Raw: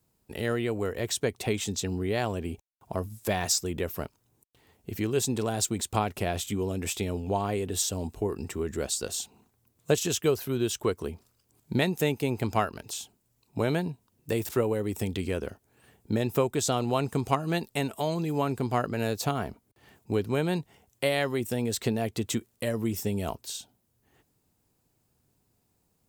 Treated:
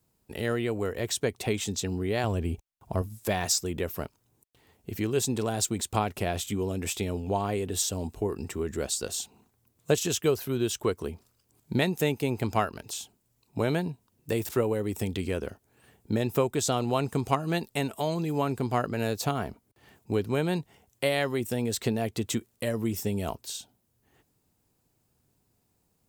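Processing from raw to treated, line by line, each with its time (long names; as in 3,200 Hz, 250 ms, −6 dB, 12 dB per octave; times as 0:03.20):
0:02.24–0:03.02: low-shelf EQ 110 Hz +11.5 dB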